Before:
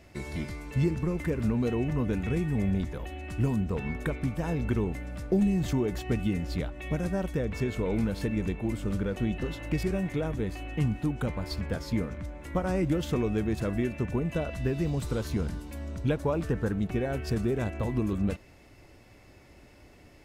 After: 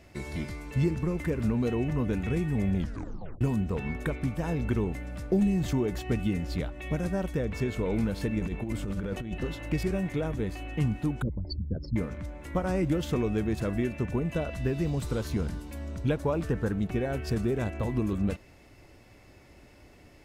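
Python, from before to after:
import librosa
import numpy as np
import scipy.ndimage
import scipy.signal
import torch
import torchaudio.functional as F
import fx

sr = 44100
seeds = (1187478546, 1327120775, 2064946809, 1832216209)

y = fx.over_compress(x, sr, threshold_db=-31.0, ratio=-0.5, at=(8.39, 9.34))
y = fx.envelope_sharpen(y, sr, power=3.0, at=(11.22, 11.96))
y = fx.edit(y, sr, fx.tape_stop(start_s=2.76, length_s=0.65), tone=tone)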